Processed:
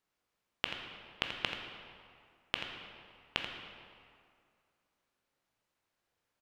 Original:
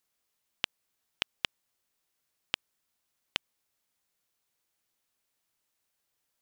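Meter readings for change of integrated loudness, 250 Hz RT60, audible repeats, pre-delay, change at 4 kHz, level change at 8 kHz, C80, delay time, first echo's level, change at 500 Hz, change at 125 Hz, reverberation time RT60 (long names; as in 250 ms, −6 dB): −2.5 dB, 2.2 s, 1, 13 ms, −2.0 dB, −7.5 dB, 4.5 dB, 84 ms, −9.5 dB, +4.5 dB, +5.0 dB, 2.2 s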